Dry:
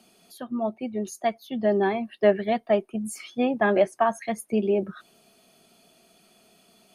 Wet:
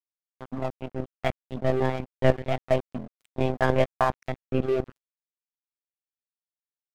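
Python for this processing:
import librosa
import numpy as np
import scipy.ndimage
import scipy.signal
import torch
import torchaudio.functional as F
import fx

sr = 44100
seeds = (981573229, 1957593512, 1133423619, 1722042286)

y = fx.lpc_monotone(x, sr, seeds[0], pitch_hz=130.0, order=10)
y = np.sign(y) * np.maximum(np.abs(y) - 10.0 ** (-32.5 / 20.0), 0.0)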